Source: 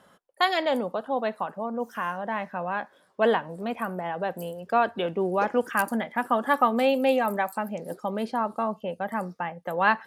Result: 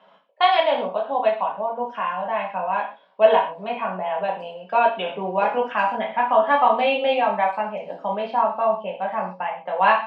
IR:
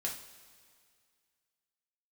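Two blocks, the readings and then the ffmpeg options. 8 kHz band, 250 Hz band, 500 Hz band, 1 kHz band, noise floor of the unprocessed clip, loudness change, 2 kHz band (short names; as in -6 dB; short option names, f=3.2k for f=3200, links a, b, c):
under -20 dB, -4.5 dB, +5.5 dB, +7.0 dB, -61 dBFS, +5.0 dB, +2.5 dB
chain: -filter_complex "[0:a]aexciter=amount=4.8:drive=2.4:freq=2k,highpass=f=200:w=0.5412,highpass=f=200:w=1.3066,equalizer=f=240:t=q:w=4:g=-6,equalizer=f=350:t=q:w=4:g=-6,equalizer=f=650:t=q:w=4:g=6,equalizer=f=960:t=q:w=4:g=10,equalizer=f=1.9k:t=q:w=4:g=-8,lowpass=f=2.7k:w=0.5412,lowpass=f=2.7k:w=1.3066[a];[1:a]atrim=start_sample=2205,afade=t=out:st=0.19:d=0.01,atrim=end_sample=8820[b];[a][b]afir=irnorm=-1:irlink=0"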